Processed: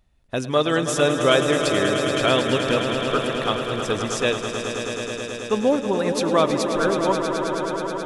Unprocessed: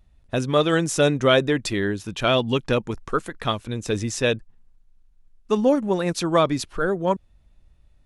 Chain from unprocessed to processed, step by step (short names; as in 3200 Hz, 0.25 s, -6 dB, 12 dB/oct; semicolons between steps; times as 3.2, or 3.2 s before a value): low shelf 160 Hz -8 dB; swelling echo 0.107 s, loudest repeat 5, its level -10 dB